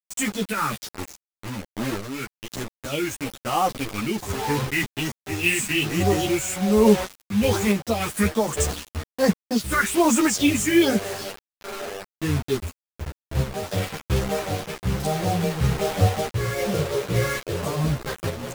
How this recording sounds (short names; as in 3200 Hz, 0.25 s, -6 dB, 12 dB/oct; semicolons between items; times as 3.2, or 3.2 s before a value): phasing stages 4, 1.2 Hz, lowest notch 680–4200 Hz; a quantiser's noise floor 6-bit, dither none; random-step tremolo; a shimmering, thickened sound